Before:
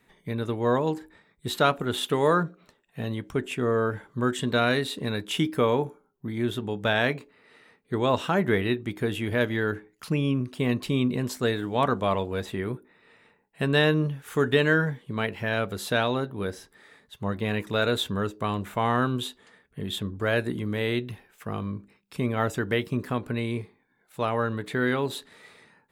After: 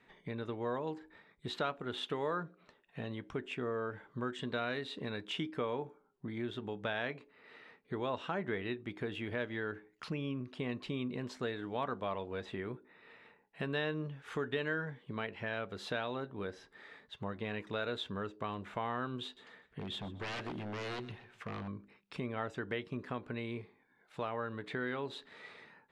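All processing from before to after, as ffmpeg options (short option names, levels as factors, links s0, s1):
-filter_complex "[0:a]asettb=1/sr,asplit=3[s0][s1][s2];[s0]atrim=end=19.244[s3];[s1]atrim=start=19.24:end=21.68,asetpts=PTS-STARTPTS,afade=t=in:d=0.004:c=qsin,afade=t=out:st=2.436:d=0.004:c=qsin,aeval=exprs='0.0447*(abs(mod(val(0)/0.0447+3,4)-2)-1)':c=same,aecho=1:1:125|250|375:0.112|0.0348|0.0108,atrim=end_sample=107604[s4];[s2]atrim=start=21.676[s5];[s3][s4]acrossfade=d=0.004:c1=hsin:c2=qsin[s6];[s6][s5]acrossfade=d=0.004:c1=qsin:c2=hsin,lowpass=3900,lowshelf=f=220:g=-7,acompressor=threshold=0.00708:ratio=2"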